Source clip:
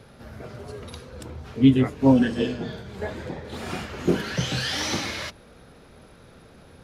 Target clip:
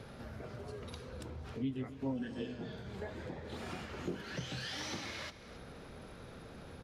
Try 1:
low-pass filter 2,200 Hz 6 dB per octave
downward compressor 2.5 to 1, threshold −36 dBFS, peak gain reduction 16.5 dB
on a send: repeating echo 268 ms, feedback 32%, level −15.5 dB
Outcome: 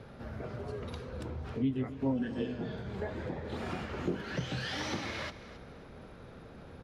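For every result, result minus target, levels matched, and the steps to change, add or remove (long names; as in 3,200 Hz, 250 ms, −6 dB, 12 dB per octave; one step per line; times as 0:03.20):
8,000 Hz band −6.5 dB; downward compressor: peak gain reduction −6 dB
change: low-pass filter 7,900 Hz 6 dB per octave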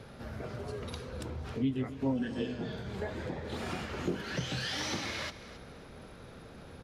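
downward compressor: peak gain reduction −6 dB
change: downward compressor 2.5 to 1, threshold −46 dBFS, peak gain reduction 22.5 dB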